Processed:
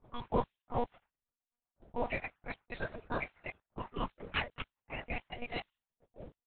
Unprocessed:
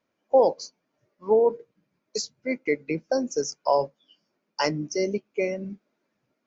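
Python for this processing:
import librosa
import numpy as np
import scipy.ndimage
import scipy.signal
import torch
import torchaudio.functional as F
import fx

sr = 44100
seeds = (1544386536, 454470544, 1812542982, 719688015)

y = fx.block_reorder(x, sr, ms=140.0, group=5)
y = fx.spec_gate(y, sr, threshold_db=-25, keep='weak')
y = fx.env_lowpass(y, sr, base_hz=410.0, full_db=-41.5)
y = fx.mod_noise(y, sr, seeds[0], snr_db=19)
y = fx.lpc_monotone(y, sr, seeds[1], pitch_hz=240.0, order=10)
y = y * 10.0 ** (11.0 / 20.0)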